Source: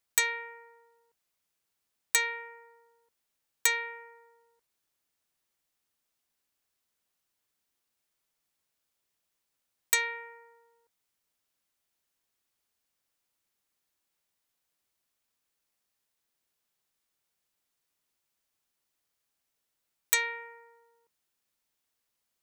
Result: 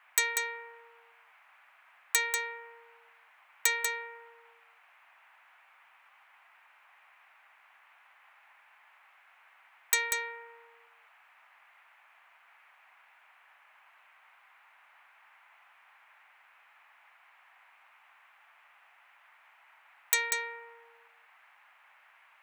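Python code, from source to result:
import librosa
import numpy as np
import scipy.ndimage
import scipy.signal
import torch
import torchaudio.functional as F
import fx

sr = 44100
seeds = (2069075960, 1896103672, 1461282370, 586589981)

y = scipy.signal.sosfilt(scipy.signal.butter(16, 170.0, 'highpass', fs=sr, output='sos'), x)
y = fx.dmg_noise_band(y, sr, seeds[0], low_hz=740.0, high_hz=2500.0, level_db=-61.0)
y = y + 10.0 ** (-6.0 / 20.0) * np.pad(y, (int(191 * sr / 1000.0), 0))[:len(y)]
y = y * 10.0 ** (-1.5 / 20.0)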